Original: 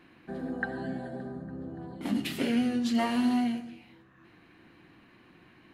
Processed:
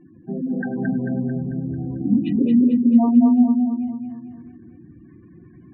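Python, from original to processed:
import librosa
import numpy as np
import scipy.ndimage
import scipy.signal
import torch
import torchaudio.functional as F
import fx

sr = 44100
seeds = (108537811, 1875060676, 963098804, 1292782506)

y = fx.spec_gate(x, sr, threshold_db=-10, keep='strong')
y = fx.tilt_eq(y, sr, slope=-4.0)
y = fx.echo_feedback(y, sr, ms=222, feedback_pct=50, wet_db=-4.0)
y = F.gain(torch.from_numpy(y), 3.5).numpy()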